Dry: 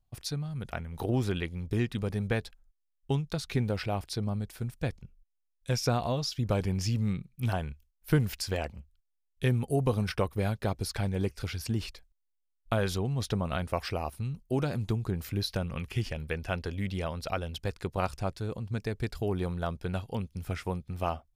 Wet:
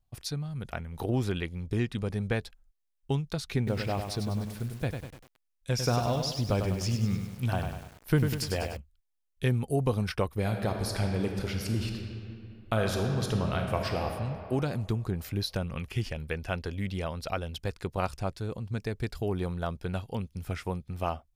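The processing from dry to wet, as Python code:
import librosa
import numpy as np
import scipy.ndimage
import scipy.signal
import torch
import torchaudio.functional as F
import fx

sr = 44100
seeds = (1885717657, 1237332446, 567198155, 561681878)

y = fx.lowpass(x, sr, hz=12000.0, slope=12, at=(1.58, 2.41))
y = fx.echo_crushed(y, sr, ms=99, feedback_pct=55, bits=8, wet_db=-6.0, at=(3.57, 8.77))
y = fx.reverb_throw(y, sr, start_s=10.39, length_s=3.67, rt60_s=2.6, drr_db=2.5)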